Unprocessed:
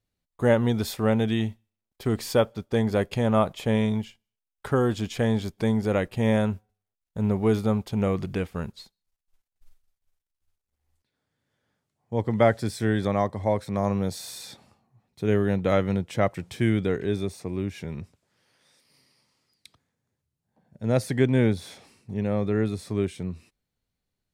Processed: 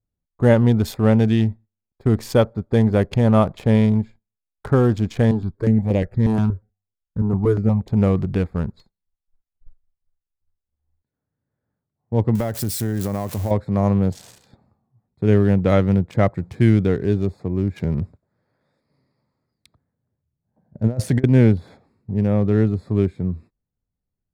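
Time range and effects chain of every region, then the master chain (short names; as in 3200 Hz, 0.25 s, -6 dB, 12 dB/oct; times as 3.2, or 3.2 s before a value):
5.31–7.88 high shelf 11000 Hz -4.5 dB + step phaser 8.4 Hz 560–4900 Hz
12.35–13.51 switching spikes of -21.5 dBFS + compressor, threshold -25 dBFS
17.76–21.24 bell 610 Hz +4 dB 0.25 oct + negative-ratio compressor -26 dBFS, ratio -0.5
whole clip: Wiener smoothing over 15 samples; gate -48 dBFS, range -9 dB; low shelf 240 Hz +8.5 dB; gain +3 dB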